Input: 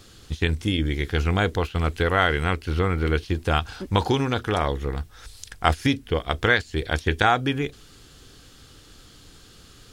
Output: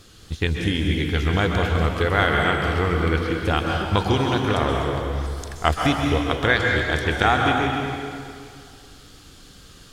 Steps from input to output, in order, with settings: wow and flutter 58 cents; plate-style reverb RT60 2.3 s, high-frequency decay 0.85×, pre-delay 115 ms, DRR 0.5 dB

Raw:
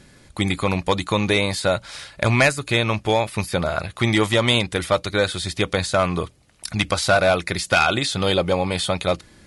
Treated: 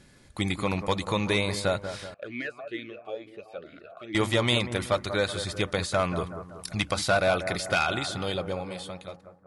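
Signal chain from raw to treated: fade out at the end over 1.96 s; bucket-brigade echo 188 ms, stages 2048, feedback 50%, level -10 dB; 2.14–4.15 s: talking filter a-i 2.2 Hz; trim -6.5 dB

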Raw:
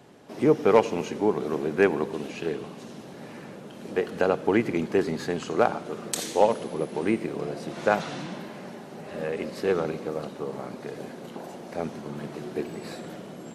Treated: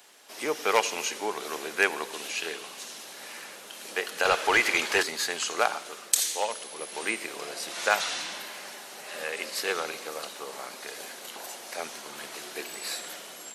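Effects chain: high-pass 1.1 kHz 6 dB/octave; tilt EQ +3.5 dB/octave; level rider gain up to 3 dB; in parallel at -11 dB: saturation -18 dBFS, distortion -11 dB; 4.25–5.03 s: on the sum: overdrive pedal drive 16 dB, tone 4.4 kHz, clips at -10 dBFS; trim -1 dB

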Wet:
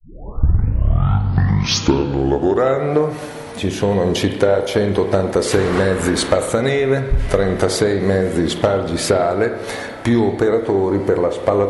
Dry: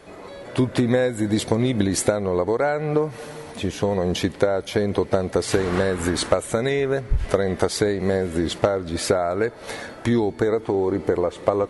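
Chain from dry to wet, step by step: tape start-up on the opening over 2.97 s; spring tank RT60 1.2 s, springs 30/52 ms, chirp 25 ms, DRR 6.5 dB; Chebyshev shaper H 5 -21 dB, 7 -37 dB, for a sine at -3.5 dBFS; trim +2.5 dB

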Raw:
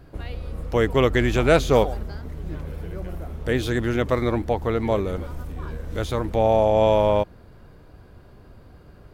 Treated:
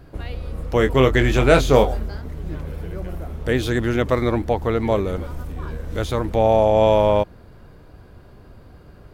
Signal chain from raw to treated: 0.77–2.20 s: doubling 23 ms -7 dB; trim +2.5 dB

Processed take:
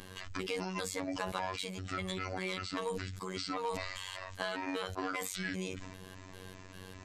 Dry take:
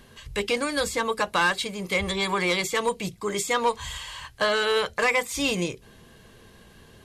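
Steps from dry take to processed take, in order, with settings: pitch shift switched off and on -8.5 st, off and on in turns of 198 ms; compression 2.5:1, threshold -46 dBFS, peak gain reduction 17.5 dB; robot voice 93.5 Hz; decay stretcher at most 36 dB/s; trim +4.5 dB

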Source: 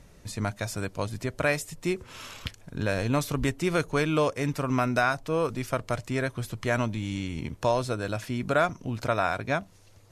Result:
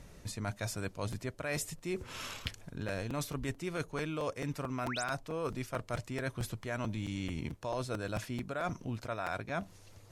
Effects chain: reverse; compression 10:1, threshold -33 dBFS, peak gain reduction 15 dB; reverse; painted sound rise, 4.84–5.04 s, 510–10000 Hz -40 dBFS; crackling interface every 0.22 s, samples 256, repeat, from 0.90 s

